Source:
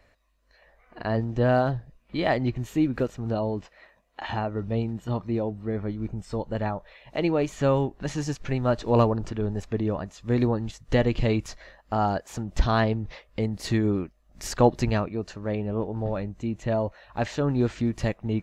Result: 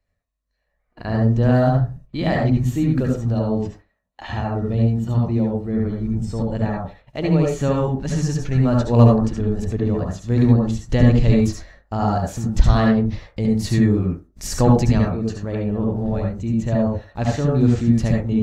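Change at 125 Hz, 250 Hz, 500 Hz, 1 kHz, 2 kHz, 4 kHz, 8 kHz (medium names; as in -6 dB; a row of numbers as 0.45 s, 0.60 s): +10.0 dB, +8.5 dB, +3.5 dB, +2.5 dB, +2.0 dB, +3.0 dB, +7.0 dB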